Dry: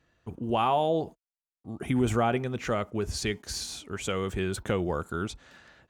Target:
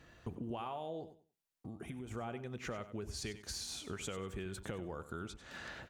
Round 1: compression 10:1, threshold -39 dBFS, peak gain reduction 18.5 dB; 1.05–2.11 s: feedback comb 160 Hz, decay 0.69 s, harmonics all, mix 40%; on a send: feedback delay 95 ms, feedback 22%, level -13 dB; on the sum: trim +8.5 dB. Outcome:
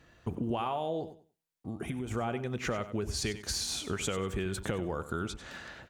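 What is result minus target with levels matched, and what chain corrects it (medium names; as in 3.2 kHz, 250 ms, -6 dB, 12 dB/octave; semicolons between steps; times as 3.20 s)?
compression: peak gain reduction -9 dB
compression 10:1, threshold -49 dBFS, peak gain reduction 27.5 dB; 1.05–2.11 s: feedback comb 160 Hz, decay 0.69 s, harmonics all, mix 40%; on a send: feedback delay 95 ms, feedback 22%, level -13 dB; on the sum: trim +8.5 dB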